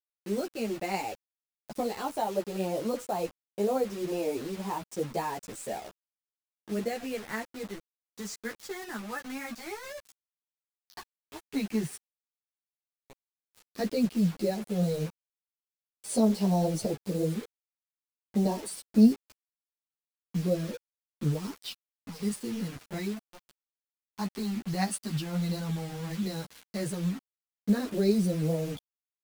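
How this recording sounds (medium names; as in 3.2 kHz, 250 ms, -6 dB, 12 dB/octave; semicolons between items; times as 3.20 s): phasing stages 2, 0.072 Hz, lowest notch 510–1600 Hz; a quantiser's noise floor 8-bit, dither none; a shimmering, thickened sound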